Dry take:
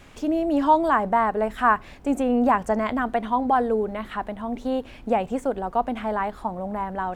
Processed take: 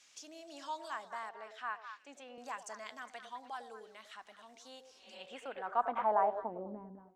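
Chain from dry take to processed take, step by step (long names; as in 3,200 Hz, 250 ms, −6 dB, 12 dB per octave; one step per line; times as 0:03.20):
fade-out on the ending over 1.14 s
0:04.88–0:05.18: healed spectral selection 220–4,500 Hz both
echo through a band-pass that steps 103 ms, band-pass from 510 Hz, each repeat 1.4 octaves, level −5 dB
band-pass filter sweep 5,900 Hz → 240 Hz, 0:04.97–0:06.87
0:01.29–0:02.38: three-way crossover with the lows and the highs turned down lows −16 dB, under 190 Hz, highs −18 dB, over 4,400 Hz
level +1 dB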